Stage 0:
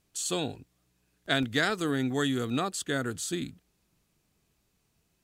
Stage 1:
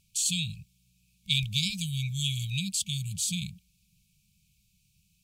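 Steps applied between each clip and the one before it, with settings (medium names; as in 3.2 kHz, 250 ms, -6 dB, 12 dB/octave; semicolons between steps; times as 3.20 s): FFT band-reject 210–2200 Hz; trim +5.5 dB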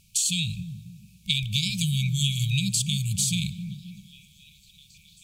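compression, threshold -31 dBFS, peak gain reduction 9.5 dB; repeats whose band climbs or falls 270 ms, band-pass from 160 Hz, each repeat 0.7 oct, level -6 dB; on a send at -19.5 dB: reverberation RT60 1.7 s, pre-delay 23 ms; on the sum: trim +9 dB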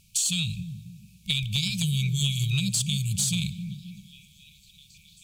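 saturation -14.5 dBFS, distortion -23 dB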